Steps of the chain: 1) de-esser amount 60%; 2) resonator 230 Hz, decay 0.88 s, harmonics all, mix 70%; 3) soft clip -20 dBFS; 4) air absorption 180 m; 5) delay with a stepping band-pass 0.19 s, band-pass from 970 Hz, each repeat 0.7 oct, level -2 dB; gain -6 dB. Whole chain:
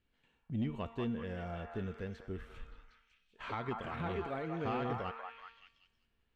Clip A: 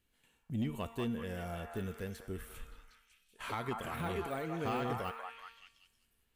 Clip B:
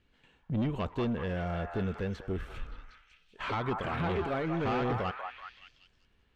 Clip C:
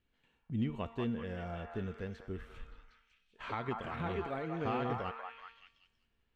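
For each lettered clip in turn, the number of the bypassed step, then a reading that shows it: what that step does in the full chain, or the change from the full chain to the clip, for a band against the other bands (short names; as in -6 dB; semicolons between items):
4, 4 kHz band +3.5 dB; 2, crest factor change -2.5 dB; 3, distortion -22 dB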